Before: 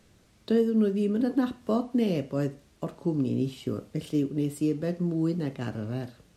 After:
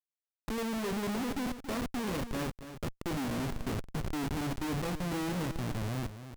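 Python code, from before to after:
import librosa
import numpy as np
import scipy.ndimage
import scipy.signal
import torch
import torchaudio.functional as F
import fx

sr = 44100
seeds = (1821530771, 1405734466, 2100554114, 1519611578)

y = fx.low_shelf(x, sr, hz=160.0, db=-6.5, at=(0.78, 3.26))
y = fx.level_steps(y, sr, step_db=10)
y = fx.schmitt(y, sr, flips_db=-40.5)
y = y + 10.0 ** (-11.5 / 20.0) * np.pad(y, (int(278 * sr / 1000.0), 0))[:len(y)]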